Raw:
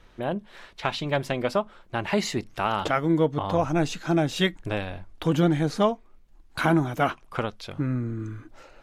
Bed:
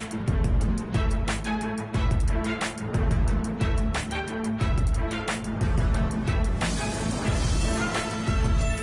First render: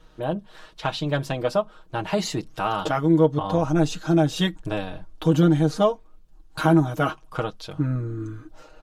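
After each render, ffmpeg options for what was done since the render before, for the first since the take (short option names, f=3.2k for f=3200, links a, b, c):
-af "equalizer=f=2.1k:t=o:w=0.56:g=-8.5,aecho=1:1:6.4:0.74"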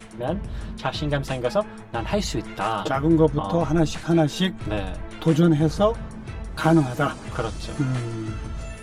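-filter_complex "[1:a]volume=-9.5dB[a];[0:a][a]amix=inputs=2:normalize=0"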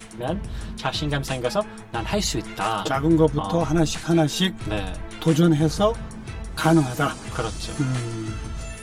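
-af "highshelf=f=3.6k:g=8,bandreject=f=580:w=13"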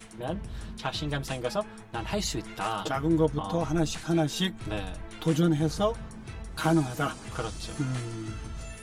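-af "volume=-6.5dB"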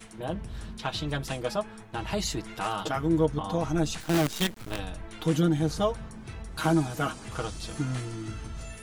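-filter_complex "[0:a]asettb=1/sr,asplit=3[a][b][c];[a]atrim=end=4.004[d];[b]atrim=start=4:end=4.79,asetpts=PTS-STARTPTS,afade=t=in:d=0.004:c=qsin,afade=t=out:st=0.786:d=0.004:c=qsin,acrusher=bits=5:dc=4:mix=0:aa=0.000001[e];[c]atrim=start=4.786[f];[d][e]acrossfade=d=0.004:c1=hsin:c2=qsin[g];[g][f]acrossfade=d=0.004:c1=qsin:c2=hsin"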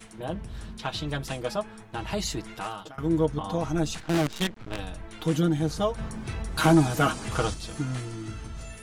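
-filter_complex "[0:a]asplit=3[a][b][c];[a]afade=t=out:st=3.99:d=0.02[d];[b]adynamicsmooth=sensitivity=6.5:basefreq=3.1k,afade=t=in:st=3.99:d=0.02,afade=t=out:st=4.77:d=0.02[e];[c]afade=t=in:st=4.77:d=0.02[f];[d][e][f]amix=inputs=3:normalize=0,asplit=3[g][h][i];[g]afade=t=out:st=5.97:d=0.02[j];[h]aeval=exprs='0.251*sin(PI/2*1.41*val(0)/0.251)':c=same,afade=t=in:st=5.97:d=0.02,afade=t=out:st=7.53:d=0.02[k];[i]afade=t=in:st=7.53:d=0.02[l];[j][k][l]amix=inputs=3:normalize=0,asplit=2[m][n];[m]atrim=end=2.98,asetpts=PTS-STARTPTS,afade=t=out:st=2.49:d=0.49:silence=0.0668344[o];[n]atrim=start=2.98,asetpts=PTS-STARTPTS,afade=t=in:d=0.004:c=hsin:silence=0.0668344[p];[o][p]concat=n=2:v=0:a=1"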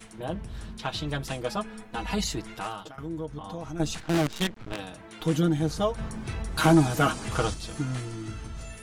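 -filter_complex "[0:a]asettb=1/sr,asplit=3[a][b][c];[a]atrim=end=1.564[d];[b]atrim=start=1.56:end=2.24,asetpts=PTS-STARTPTS,afade=t=in:d=0.004:c=qsin,afade=t=out:st=0.676:d=0.004:c=qsin,aecho=1:1:4.1:0.81,atrim=end_sample=29988[e];[c]atrim=start=2.236[f];[d][e]acrossfade=d=0.004:c1=hsin:c2=qsin[g];[g][f]acrossfade=d=0.004:c1=qsin:c2=hsin,asettb=1/sr,asplit=3[h][i][j];[h]atrim=end=2.884[k];[i]atrim=start=2.88:end=3.8,asetpts=PTS-STARTPTS,afade=t=in:d=0.004:c=qsin,afade=t=out:st=0.916:d=0.004:c=qsin,acompressor=threshold=-39dB:ratio=2:attack=3.2:release=140:knee=1:detection=peak[l];[j]atrim=start=3.796[m];[k][l]acrossfade=d=0.004:c1=hsin:c2=qsin[n];[n][m]acrossfade=d=0.004:c1=qsin:c2=hsin,asettb=1/sr,asplit=3[o][p][q];[o]atrim=end=4.734[r];[p]atrim=start=4.73:end=5.21,asetpts=PTS-STARTPTS,afade=t=in:d=0.004:c=qsin,afade=t=out:st=0.476:d=0.004:c=qsin,highpass=150[s];[q]atrim=start=5.206[t];[r][s]acrossfade=d=0.004:c1=hsin:c2=qsin[u];[u][t]acrossfade=d=0.004:c1=qsin:c2=hsin"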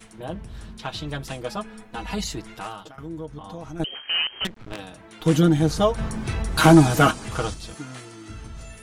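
-filter_complex "[0:a]asettb=1/sr,asplit=3[a][b][c];[a]atrim=end=3.844[d];[b]atrim=start=3.84:end=4.45,asetpts=PTS-STARTPTS,afade=t=in:d=0.004:c=qsin,afade=t=out:st=0.606:d=0.004:c=qsin,lowpass=f=2.7k:t=q:w=0.5098,lowpass=f=2.7k:t=q:w=0.6013,lowpass=f=2.7k:t=q:w=0.9,lowpass=f=2.7k:t=q:w=2.563,afreqshift=-3200[e];[c]atrim=start=4.446[f];[d][e]acrossfade=d=0.004:c1=hsin:c2=qsin[g];[g][f]acrossfade=d=0.004:c1=qsin:c2=hsin,asettb=1/sr,asplit=3[h][i][j];[h]atrim=end=7.744[k];[i]atrim=start=7.74:end=8.3,asetpts=PTS-STARTPTS,afade=t=in:d=0.004:c=qsin,afade=t=out:st=0.556:d=0.004:c=qsin,highpass=f=410:p=1[l];[j]atrim=start=8.296[m];[k][l]acrossfade=d=0.004:c1=hsin:c2=qsin[n];[n][m]acrossfade=d=0.004:c1=qsin:c2=hsin,asplit=3[o][p][q];[o]atrim=end=5.262[r];[p]atrim=start=5.258:end=7.112,asetpts=PTS-STARTPTS,volume=6.5dB[s];[q]atrim=start=7.108[t];[r][s]acrossfade=d=0.004:c1=hsin:c2=hsin[u];[u][t]acrossfade=d=0.004:c1=hsin:c2=hsin"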